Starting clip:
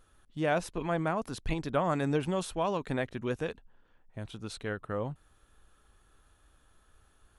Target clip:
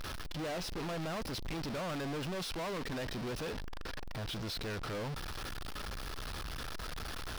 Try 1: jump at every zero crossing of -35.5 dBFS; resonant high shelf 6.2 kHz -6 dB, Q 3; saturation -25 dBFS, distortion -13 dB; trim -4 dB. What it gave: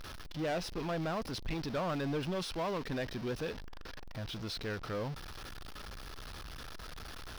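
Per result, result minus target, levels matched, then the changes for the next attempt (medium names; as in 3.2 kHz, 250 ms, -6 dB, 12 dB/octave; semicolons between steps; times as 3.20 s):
saturation: distortion -5 dB; jump at every zero crossing: distortion -5 dB
change: saturation -32 dBFS, distortion -7 dB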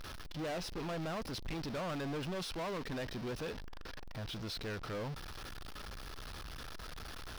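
jump at every zero crossing: distortion -5 dB
change: jump at every zero crossing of -29 dBFS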